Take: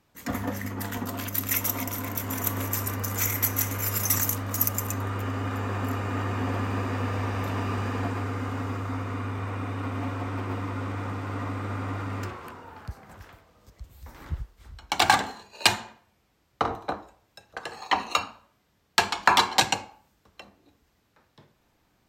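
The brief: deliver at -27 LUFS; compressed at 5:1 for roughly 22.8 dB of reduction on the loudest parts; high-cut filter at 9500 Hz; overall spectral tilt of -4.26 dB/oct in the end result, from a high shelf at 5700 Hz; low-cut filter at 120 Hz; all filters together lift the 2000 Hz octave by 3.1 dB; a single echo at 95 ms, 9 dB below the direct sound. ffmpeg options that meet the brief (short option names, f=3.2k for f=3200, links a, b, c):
-af "highpass=120,lowpass=9.5k,equalizer=f=2k:t=o:g=4.5,highshelf=f=5.7k:g=-4.5,acompressor=threshold=-42dB:ratio=5,aecho=1:1:95:0.355,volume=17dB"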